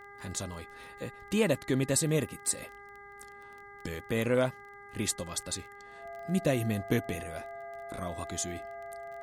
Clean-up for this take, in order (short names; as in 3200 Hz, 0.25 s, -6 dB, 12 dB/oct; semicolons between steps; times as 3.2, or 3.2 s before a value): de-click; de-hum 404 Hz, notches 5; notch 680 Hz, Q 30